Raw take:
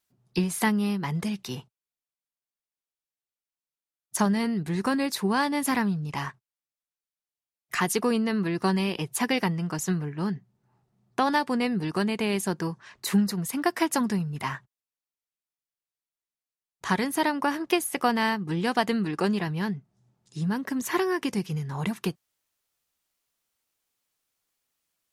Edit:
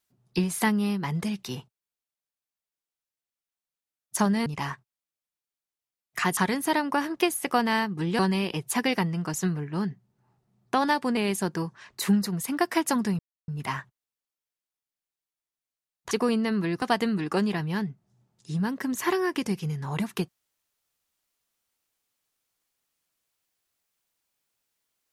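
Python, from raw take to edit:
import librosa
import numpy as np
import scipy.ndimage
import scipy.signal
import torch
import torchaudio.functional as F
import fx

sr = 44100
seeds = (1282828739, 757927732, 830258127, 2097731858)

y = fx.edit(x, sr, fx.cut(start_s=4.46, length_s=1.56),
    fx.swap(start_s=7.93, length_s=0.71, other_s=16.87, other_length_s=1.82),
    fx.cut(start_s=11.62, length_s=0.6),
    fx.insert_silence(at_s=14.24, length_s=0.29), tone=tone)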